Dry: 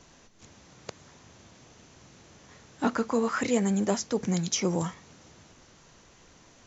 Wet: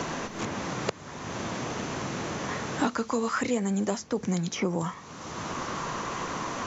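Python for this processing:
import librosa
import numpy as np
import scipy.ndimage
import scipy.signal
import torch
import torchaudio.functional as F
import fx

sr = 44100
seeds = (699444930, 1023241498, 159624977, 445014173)

y = fx.peak_eq(x, sr, hz=1100.0, db=fx.steps((0.0, 3.0), (4.87, 10.0)), octaves=0.47)
y = fx.band_squash(y, sr, depth_pct=100)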